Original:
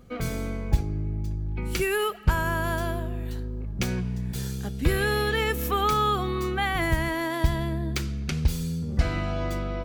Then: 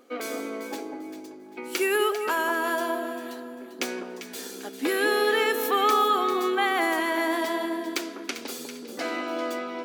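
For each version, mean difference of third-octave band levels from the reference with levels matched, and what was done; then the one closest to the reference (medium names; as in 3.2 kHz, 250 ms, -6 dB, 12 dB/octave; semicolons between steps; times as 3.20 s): 8.5 dB: elliptic high-pass 270 Hz, stop band 50 dB; vibrato 4.8 Hz 9.6 cents; on a send: echo whose repeats swap between lows and highs 198 ms, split 1.3 kHz, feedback 53%, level -5 dB; on the sum: trim +2.5 dB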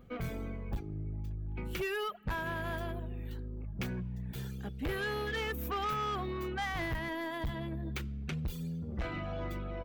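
3.5 dB: reverb removal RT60 0.85 s; high-order bell 7.1 kHz -9.5 dB; saturation -25.5 dBFS, distortion -7 dB; trim -4.5 dB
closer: second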